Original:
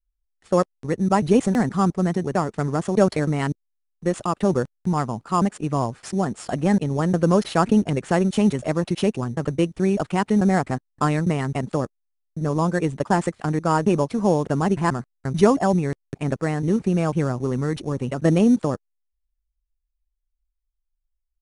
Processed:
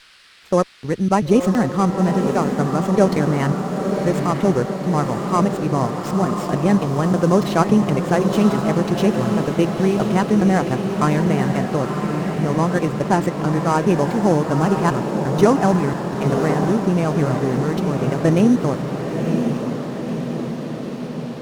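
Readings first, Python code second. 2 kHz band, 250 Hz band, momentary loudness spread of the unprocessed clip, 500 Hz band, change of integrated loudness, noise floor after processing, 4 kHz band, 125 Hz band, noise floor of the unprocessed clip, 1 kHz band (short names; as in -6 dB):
+4.0 dB, +4.0 dB, 8 LU, +4.0 dB, +3.0 dB, -29 dBFS, +4.0 dB, +4.0 dB, -77 dBFS, +4.0 dB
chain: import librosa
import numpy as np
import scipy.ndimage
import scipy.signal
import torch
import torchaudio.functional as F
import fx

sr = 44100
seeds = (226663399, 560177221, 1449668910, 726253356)

y = fx.echo_diffused(x, sr, ms=986, feedback_pct=65, wet_db=-5.0)
y = fx.dmg_noise_band(y, sr, seeds[0], low_hz=1200.0, high_hz=5000.0, level_db=-51.0)
y = fx.running_max(y, sr, window=3)
y = y * librosa.db_to_amplitude(2.0)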